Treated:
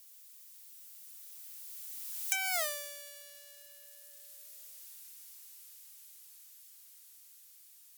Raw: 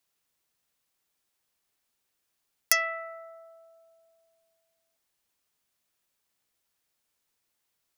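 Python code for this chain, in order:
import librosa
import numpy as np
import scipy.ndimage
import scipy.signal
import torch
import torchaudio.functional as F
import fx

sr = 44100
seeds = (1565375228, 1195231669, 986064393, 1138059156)

y = x + 0.5 * 10.0 ** (-21.0 / 20.0) * np.diff(np.sign(x), prepend=np.sign(x[:1]))
y = fx.doppler_pass(y, sr, speed_mps=50, closest_m=3.4, pass_at_s=2.6)
y = y * 10.0 ** (3.0 / 20.0)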